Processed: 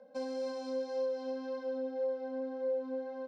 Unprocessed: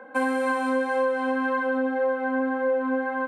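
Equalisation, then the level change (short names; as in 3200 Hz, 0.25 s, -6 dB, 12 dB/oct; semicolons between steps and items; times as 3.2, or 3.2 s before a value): EQ curve 200 Hz 0 dB, 330 Hz -16 dB, 590 Hz +1 dB, 880 Hz -17 dB, 1700 Hz -21 dB, 2900 Hz -11 dB, 5300 Hz +12 dB, 9700 Hz -23 dB; -6.5 dB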